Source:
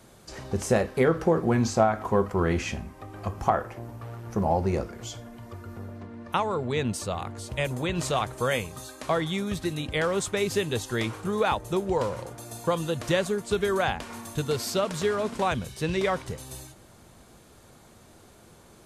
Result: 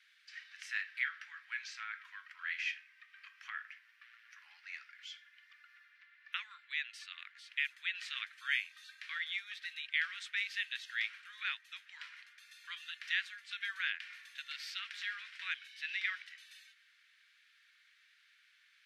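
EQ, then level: steep high-pass 1.7 kHz 48 dB/octave; distance through air 420 m; peaking EQ 5.8 kHz +6 dB 0.43 oct; +4.0 dB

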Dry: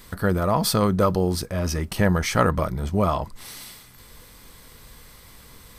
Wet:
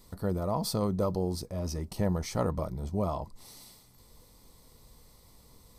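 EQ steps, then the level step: high-order bell 2 kHz -9 dB; treble shelf 7 kHz -4 dB; band-stop 1.6 kHz, Q 8; -8.5 dB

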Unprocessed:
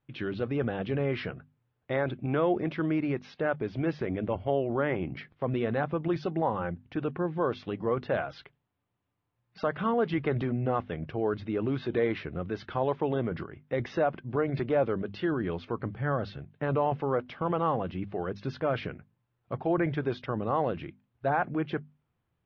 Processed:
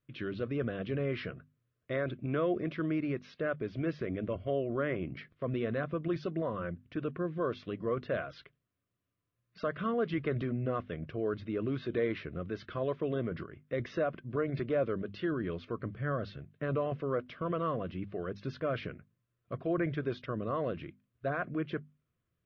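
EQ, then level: Butterworth band-stop 840 Hz, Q 2.6; -4.0 dB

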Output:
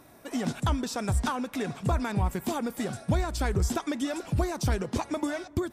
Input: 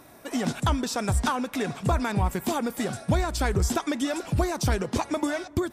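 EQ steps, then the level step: bass shelf 350 Hz +3 dB; -4.5 dB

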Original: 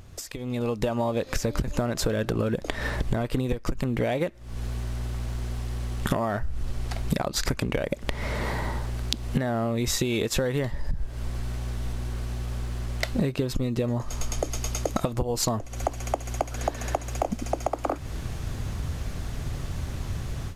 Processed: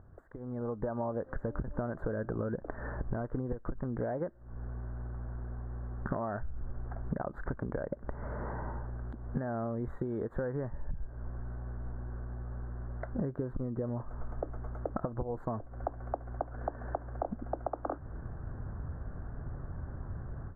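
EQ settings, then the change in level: elliptic low-pass 1.6 kHz, stop band 40 dB; -8.0 dB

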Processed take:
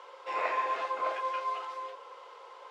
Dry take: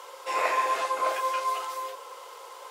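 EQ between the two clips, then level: low-pass 3.4 kHz 12 dB/octave; -5.0 dB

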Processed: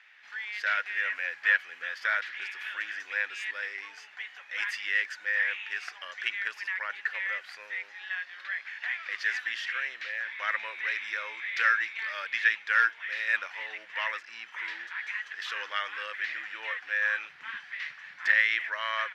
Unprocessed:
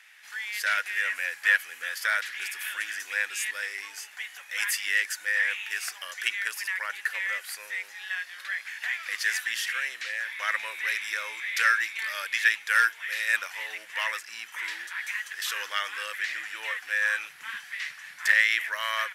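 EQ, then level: distance through air 220 m; 0.0 dB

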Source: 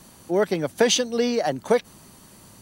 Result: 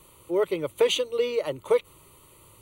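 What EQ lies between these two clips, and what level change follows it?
static phaser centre 1.1 kHz, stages 8; -1.0 dB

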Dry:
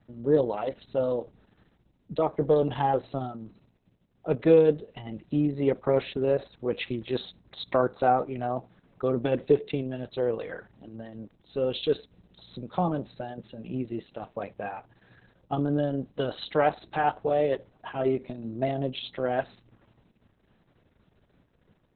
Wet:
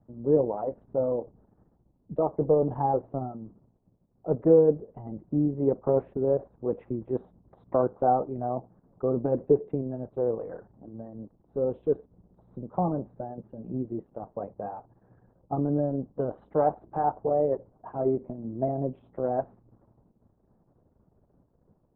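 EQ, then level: low-pass 1 kHz 24 dB/octave; 0.0 dB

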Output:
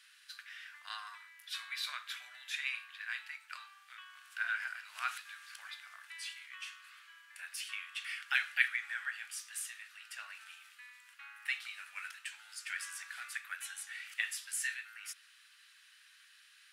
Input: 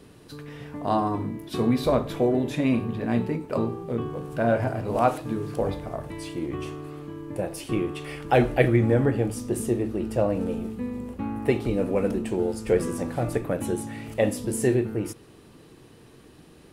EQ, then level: elliptic high-pass 1.5 kHz, stop band 70 dB; treble shelf 7.2 kHz -8 dB; +1.5 dB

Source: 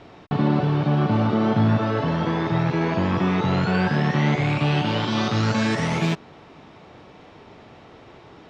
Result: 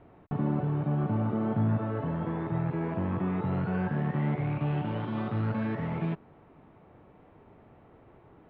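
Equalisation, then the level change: low-pass 2.4 kHz 6 dB/octave; distance through air 500 m; bass shelf 71 Hz +6.5 dB; -8.5 dB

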